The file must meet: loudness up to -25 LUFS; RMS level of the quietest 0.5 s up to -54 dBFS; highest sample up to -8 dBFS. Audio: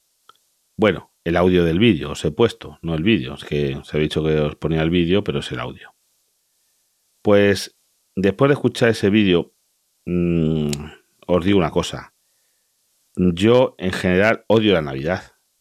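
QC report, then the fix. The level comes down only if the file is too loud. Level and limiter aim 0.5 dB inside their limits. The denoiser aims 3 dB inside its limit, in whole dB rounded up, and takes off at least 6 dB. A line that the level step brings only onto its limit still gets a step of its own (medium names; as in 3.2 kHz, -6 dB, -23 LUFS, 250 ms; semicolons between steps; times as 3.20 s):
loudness -19.0 LUFS: fail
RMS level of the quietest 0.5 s -66 dBFS: pass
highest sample -3.0 dBFS: fail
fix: trim -6.5 dB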